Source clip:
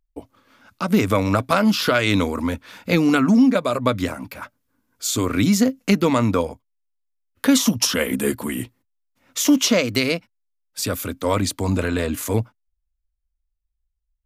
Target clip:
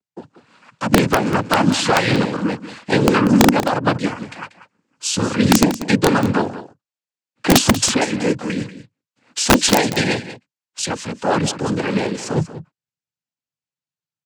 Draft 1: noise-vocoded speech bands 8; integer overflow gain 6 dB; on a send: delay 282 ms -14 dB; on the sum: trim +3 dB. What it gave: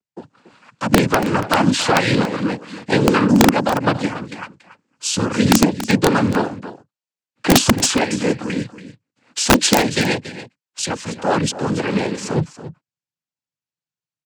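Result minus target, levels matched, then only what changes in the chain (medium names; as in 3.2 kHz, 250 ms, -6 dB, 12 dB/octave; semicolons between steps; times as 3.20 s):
echo 94 ms late
change: delay 188 ms -14 dB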